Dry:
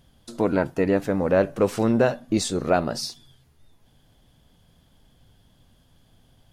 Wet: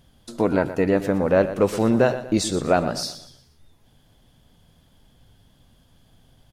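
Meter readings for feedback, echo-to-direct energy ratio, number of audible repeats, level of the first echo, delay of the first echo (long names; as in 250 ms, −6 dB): 38%, −12.5 dB, 3, −13.0 dB, 119 ms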